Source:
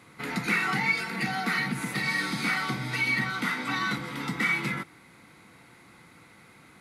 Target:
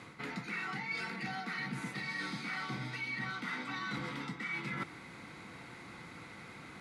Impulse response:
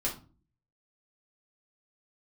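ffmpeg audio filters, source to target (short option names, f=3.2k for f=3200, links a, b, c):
-af "lowpass=7.1k,areverse,acompressor=threshold=-40dB:ratio=16,areverse,volume=4dB"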